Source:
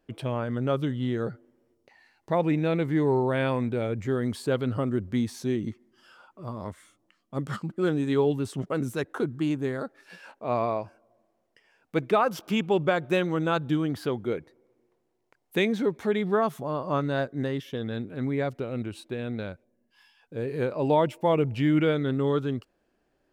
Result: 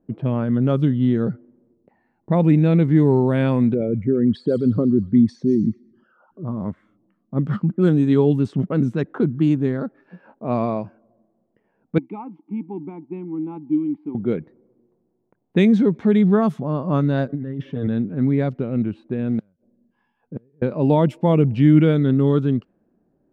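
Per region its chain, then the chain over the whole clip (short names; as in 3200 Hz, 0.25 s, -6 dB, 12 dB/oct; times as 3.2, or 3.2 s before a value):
3.74–6.45 formant sharpening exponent 2 + dynamic EQ 2200 Hz, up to +6 dB, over -49 dBFS, Q 0.85 + thin delay 0.121 s, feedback 57%, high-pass 2000 Hz, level -14 dB
11.98–14.15 G.711 law mismatch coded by A + vowel filter u
17.29–17.87 comb 6.9 ms, depth 72% + negative-ratio compressor -35 dBFS
19.26–20.62 flipped gate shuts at -24 dBFS, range -35 dB + modulation noise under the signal 27 dB
whole clip: low-pass opened by the level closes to 920 Hz, open at -19.5 dBFS; bell 190 Hz +15 dB 1.6 oct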